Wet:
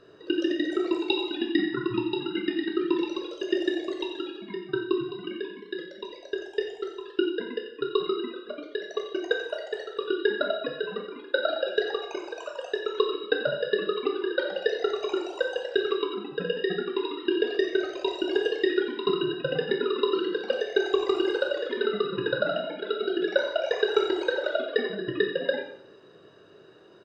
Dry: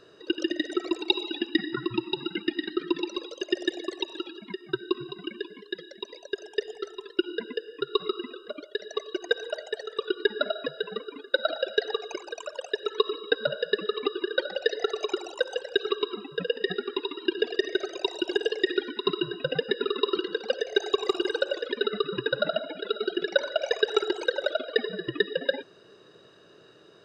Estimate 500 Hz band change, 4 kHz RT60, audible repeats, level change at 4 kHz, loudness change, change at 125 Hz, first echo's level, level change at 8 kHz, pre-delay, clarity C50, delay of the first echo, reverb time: +2.0 dB, 0.55 s, 1, -3.0 dB, +1.0 dB, +2.0 dB, -11.5 dB, no reading, 6 ms, 6.0 dB, 90 ms, 0.60 s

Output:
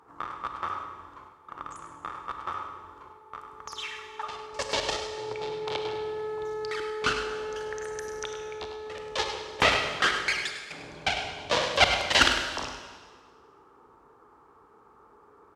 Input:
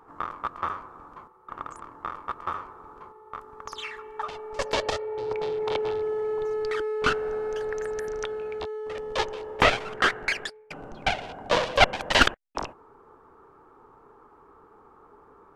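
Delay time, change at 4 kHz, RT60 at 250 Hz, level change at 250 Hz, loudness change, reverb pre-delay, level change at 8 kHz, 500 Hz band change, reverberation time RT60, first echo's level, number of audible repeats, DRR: 101 ms, +2.5 dB, 1.6 s, -3.5 dB, -1.0 dB, 28 ms, +4.0 dB, -4.5 dB, 1.5 s, -9.5 dB, 1, 4.0 dB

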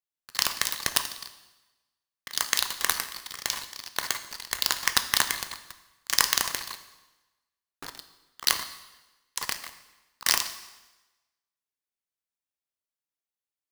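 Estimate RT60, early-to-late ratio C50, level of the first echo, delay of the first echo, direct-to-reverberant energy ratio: 1.1 s, 12.0 dB, no echo, no echo, 9.5 dB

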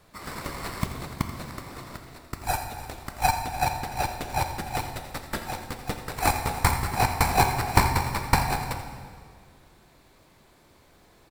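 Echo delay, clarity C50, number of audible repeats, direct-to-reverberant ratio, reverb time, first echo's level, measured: 84 ms, 6.5 dB, 1, 5.0 dB, 2.0 s, -13.5 dB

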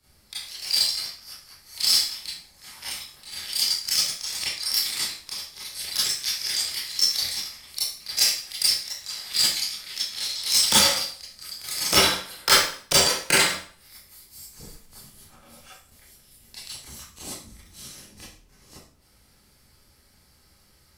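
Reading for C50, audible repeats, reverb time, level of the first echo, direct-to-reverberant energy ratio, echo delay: 1.0 dB, no echo, 0.50 s, no echo, -10.5 dB, no echo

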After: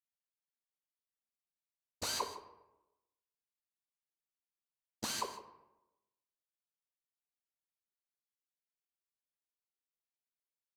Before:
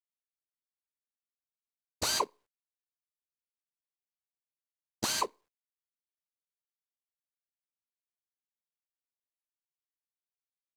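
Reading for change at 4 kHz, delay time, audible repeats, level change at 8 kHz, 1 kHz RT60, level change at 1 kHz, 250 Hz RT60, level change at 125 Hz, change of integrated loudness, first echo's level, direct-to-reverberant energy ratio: -7.0 dB, 62 ms, 2, -7.0 dB, 0.85 s, -6.5 dB, 1.0 s, -6.5 dB, -7.0 dB, -15.0 dB, 6.0 dB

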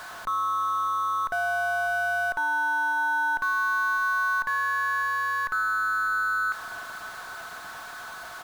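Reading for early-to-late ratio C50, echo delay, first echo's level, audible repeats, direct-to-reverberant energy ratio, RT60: no reverb, 598 ms, -16.5 dB, 4, no reverb, no reverb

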